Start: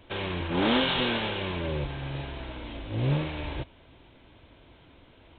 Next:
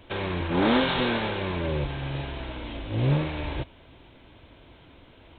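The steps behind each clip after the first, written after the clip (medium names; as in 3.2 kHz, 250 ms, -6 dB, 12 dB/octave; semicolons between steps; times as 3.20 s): dynamic bell 3 kHz, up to -7 dB, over -45 dBFS, Q 2.5; trim +3 dB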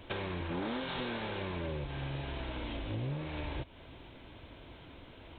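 compression 6:1, threshold -35 dBFS, peak gain reduction 16 dB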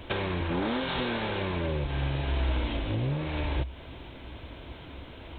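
peaking EQ 65 Hz +10 dB 0.23 oct; trim +7 dB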